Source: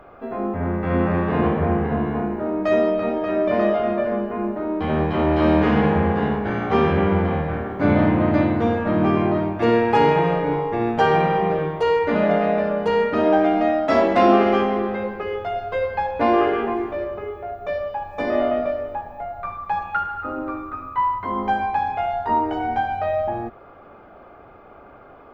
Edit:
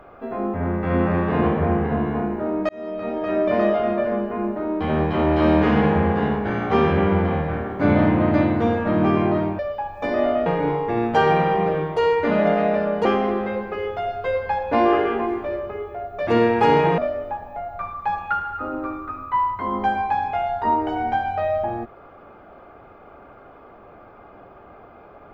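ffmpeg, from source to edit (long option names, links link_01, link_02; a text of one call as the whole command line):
ffmpeg -i in.wav -filter_complex "[0:a]asplit=7[link_01][link_02][link_03][link_04][link_05][link_06][link_07];[link_01]atrim=end=2.69,asetpts=PTS-STARTPTS,afade=type=out:start_time=2.686:duration=0.004:curve=hsin[link_08];[link_02]atrim=start=2.69:end=9.592,asetpts=PTS-STARTPTS,afade=type=in:duration=0.64[link_09];[link_03]atrim=start=17.748:end=18.622[link_10];[link_04]atrim=start=10.298:end=12.892[link_11];[link_05]atrim=start=14.528:end=17.752[link_12];[link_06]atrim=start=9.588:end=10.302[link_13];[link_07]atrim=start=18.618[link_14];[link_08][link_09]concat=n=2:v=0:a=1[link_15];[link_15][link_10]acrossfade=duration=0.004:curve1=hsin:curve2=hsin[link_16];[link_16][link_11]acrossfade=duration=0.004:curve1=hsin:curve2=hsin[link_17];[link_17][link_12]acrossfade=duration=0.004:curve1=hsin:curve2=hsin[link_18];[link_18][link_13]acrossfade=duration=0.004:curve1=hsin:curve2=hsin[link_19];[link_19][link_14]acrossfade=duration=0.004:curve1=hsin:curve2=hsin" out.wav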